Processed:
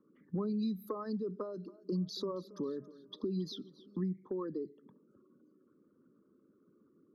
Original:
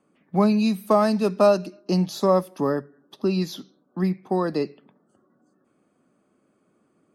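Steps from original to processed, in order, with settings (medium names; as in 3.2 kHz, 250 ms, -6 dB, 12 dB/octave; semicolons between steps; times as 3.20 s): resonances exaggerated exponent 2; compression 2.5:1, threshold -38 dBFS, peak gain reduction 16.5 dB; static phaser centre 2.6 kHz, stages 6; 1.28–3.98 s: modulated delay 274 ms, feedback 50%, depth 110 cents, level -19.5 dB; trim +1 dB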